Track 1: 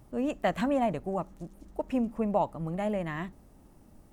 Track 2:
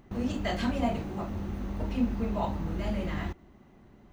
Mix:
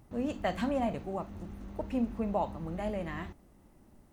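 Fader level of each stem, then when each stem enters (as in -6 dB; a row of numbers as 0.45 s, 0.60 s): -4.5 dB, -10.5 dB; 0.00 s, 0.00 s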